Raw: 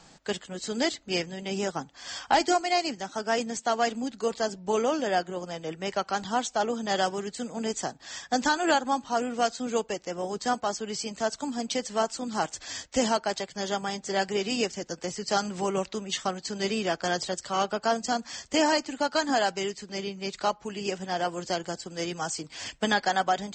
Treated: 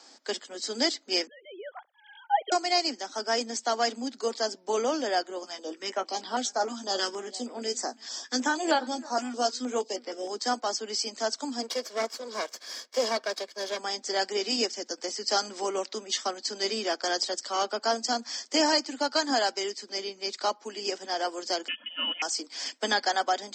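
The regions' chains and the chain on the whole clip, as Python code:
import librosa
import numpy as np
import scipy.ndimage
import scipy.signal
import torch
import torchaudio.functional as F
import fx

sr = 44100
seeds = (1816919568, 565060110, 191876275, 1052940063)

y = fx.chain(x, sr, fx.sine_speech(),
    fx.highpass(hz=780.0, slope=6),
    fx.peak_eq(hz=2600.0, db=-10.5, octaves=0.56), at=(1.27, 2.52))
y = fx.chain(y, sr, fx.doubler(ms=16.0, db=-9.0),
    fx.echo_single(ms=334, db=-22.0),
    fx.filter_held_notch(hz=6.4, low_hz=470.0, high_hz=6600.0), at=(5.43, 10.28))
y = fx.chain(y, sr, fx.lower_of_two(delay_ms=1.8),
    fx.high_shelf(hz=7000.0, db=-10.5), at=(11.62, 13.79))
y = fx.chain(y, sr, fx.comb(ms=2.6, depth=0.97),
    fx.freq_invert(carrier_hz=3300), at=(21.68, 22.22))
y = scipy.signal.sosfilt(scipy.signal.butter(12, 230.0, 'highpass', fs=sr, output='sos'), y)
y = fx.peak_eq(y, sr, hz=5100.0, db=9.5, octaves=0.5)
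y = fx.notch(y, sr, hz=2700.0, q=13.0)
y = y * librosa.db_to_amplitude(-1.5)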